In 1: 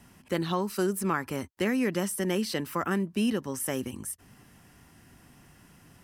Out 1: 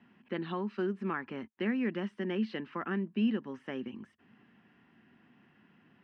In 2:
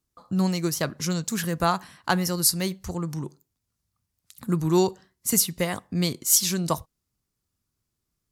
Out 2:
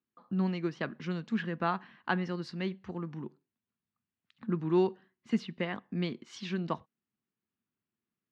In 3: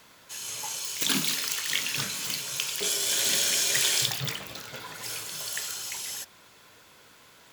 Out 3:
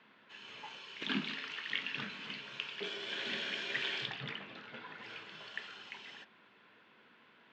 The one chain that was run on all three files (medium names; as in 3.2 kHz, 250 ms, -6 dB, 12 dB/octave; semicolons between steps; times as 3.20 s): cabinet simulation 170–3200 Hz, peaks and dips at 220 Hz +9 dB, 370 Hz +3 dB, 580 Hz -3 dB, 1.7 kHz +4 dB, 2.8 kHz +3 dB; trim -8 dB